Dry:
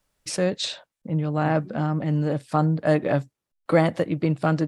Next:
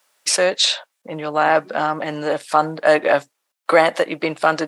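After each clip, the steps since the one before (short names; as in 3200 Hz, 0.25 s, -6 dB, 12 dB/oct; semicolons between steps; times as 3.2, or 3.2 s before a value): HPF 670 Hz 12 dB/oct; in parallel at -1 dB: limiter -19.5 dBFS, peak gain reduction 8 dB; on the sum: gain +7.5 dB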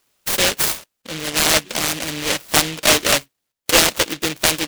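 in parallel at -11 dB: decimation with a swept rate 17×, swing 60% 0.66 Hz; on the sum: noise-modulated delay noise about 2700 Hz, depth 0.37 ms; gain -2 dB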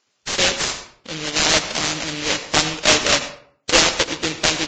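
reverb RT60 0.55 s, pre-delay 77 ms, DRR 10.5 dB; gain -1 dB; Vorbis 32 kbps 16000 Hz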